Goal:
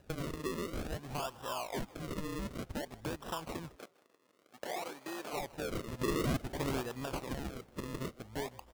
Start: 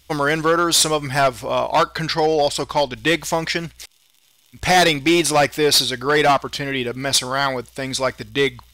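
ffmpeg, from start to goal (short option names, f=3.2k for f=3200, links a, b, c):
-filter_complex "[0:a]equalizer=f=1.1k:t=o:w=0.62:g=11,acompressor=threshold=-30dB:ratio=6,acrusher=samples=39:mix=1:aa=0.000001:lfo=1:lforange=39:lforate=0.54,asettb=1/sr,asplit=3[a][b][c];[a]atrim=end=3.764[d];[b]atrim=start=3.76:end=5.33,asetpts=PTS-STARTPTS,afade=t=in:d=0.004:c=qsin,afade=t=out:st=1.566:d=0.004:c=qsin,highpass=410[e];[c]atrim=start=5.326[f];[d][e]acrossfade=d=0.004:c1=hsin:c2=qsin[g];[g][f]acrossfade=d=0.004:c1=qsin:c2=hsin,asplit=3[h][i][j];[h]afade=t=out:st=5.98:d=0.02[k];[i]acontrast=75,afade=t=in:st=5.98:d=0.02,afade=t=out:st=6.8:d=0.02[l];[j]afade=t=in:st=6.8:d=0.02[m];[k][l][m]amix=inputs=3:normalize=0,asplit=4[n][o][p][q];[o]adelay=156,afreqshift=110,volume=-22dB[r];[p]adelay=312,afreqshift=220,volume=-28.9dB[s];[q]adelay=468,afreqshift=330,volume=-35.9dB[t];[n][r][s][t]amix=inputs=4:normalize=0,asoftclip=type=tanh:threshold=-18dB,volume=-7dB"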